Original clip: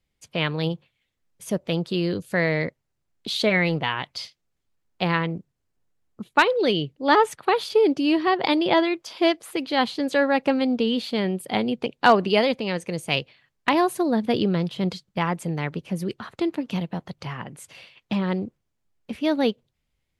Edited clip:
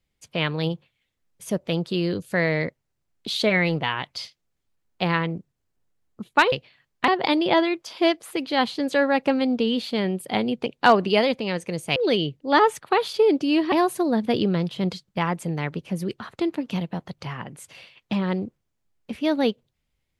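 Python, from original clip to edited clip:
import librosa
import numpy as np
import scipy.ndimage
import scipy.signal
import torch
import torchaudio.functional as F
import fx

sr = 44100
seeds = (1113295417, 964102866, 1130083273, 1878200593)

y = fx.edit(x, sr, fx.swap(start_s=6.52, length_s=1.76, other_s=13.16, other_length_s=0.56), tone=tone)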